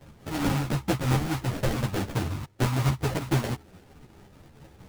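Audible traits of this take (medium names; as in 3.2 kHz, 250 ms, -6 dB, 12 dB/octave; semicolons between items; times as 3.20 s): tremolo triangle 4.6 Hz, depth 45%; aliases and images of a low sample rate 1.1 kHz, jitter 20%; a shimmering, thickened sound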